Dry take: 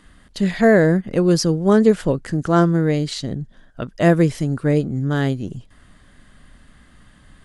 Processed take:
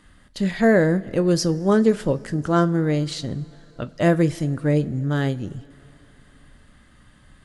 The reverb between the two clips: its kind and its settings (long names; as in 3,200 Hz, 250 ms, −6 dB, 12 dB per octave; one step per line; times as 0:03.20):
coupled-rooms reverb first 0.21 s, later 3.4 s, from −21 dB, DRR 11.5 dB
level −3 dB